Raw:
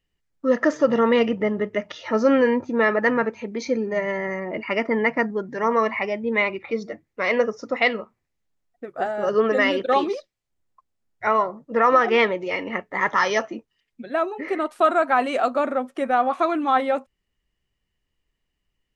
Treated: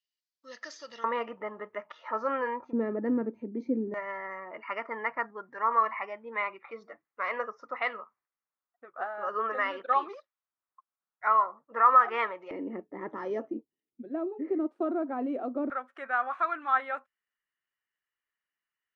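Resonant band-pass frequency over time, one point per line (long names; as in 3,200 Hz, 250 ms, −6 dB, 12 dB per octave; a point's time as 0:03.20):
resonant band-pass, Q 3
4,600 Hz
from 0:01.04 1,100 Hz
from 0:02.73 280 Hz
from 0:03.94 1,200 Hz
from 0:12.51 310 Hz
from 0:15.70 1,500 Hz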